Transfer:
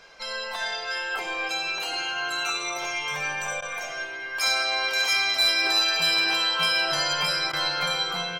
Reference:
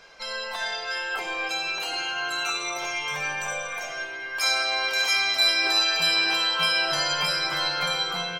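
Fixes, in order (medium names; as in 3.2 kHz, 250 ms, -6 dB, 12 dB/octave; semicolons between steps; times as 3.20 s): clip repair -16 dBFS; interpolate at 3.61/7.52 s, 11 ms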